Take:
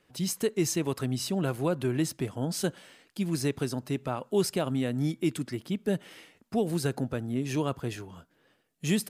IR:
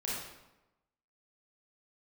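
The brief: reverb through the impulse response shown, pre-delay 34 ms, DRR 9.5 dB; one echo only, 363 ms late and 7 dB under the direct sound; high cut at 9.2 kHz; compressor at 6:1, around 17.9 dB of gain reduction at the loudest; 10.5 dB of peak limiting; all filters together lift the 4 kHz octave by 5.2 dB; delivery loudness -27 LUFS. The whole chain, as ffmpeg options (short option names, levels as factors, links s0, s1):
-filter_complex "[0:a]lowpass=9200,equalizer=f=4000:t=o:g=7,acompressor=threshold=0.00794:ratio=6,alimiter=level_in=3.98:limit=0.0631:level=0:latency=1,volume=0.251,aecho=1:1:363:0.447,asplit=2[s0][s1];[1:a]atrim=start_sample=2205,adelay=34[s2];[s1][s2]afir=irnorm=-1:irlink=0,volume=0.211[s3];[s0][s3]amix=inputs=2:normalize=0,volume=8.91"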